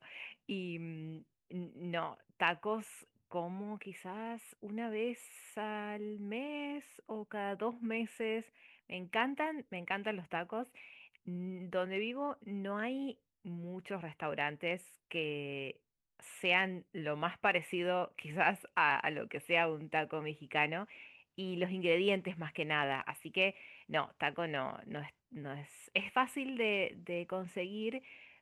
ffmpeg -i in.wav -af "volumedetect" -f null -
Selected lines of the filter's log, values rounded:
mean_volume: -38.2 dB
max_volume: -15.3 dB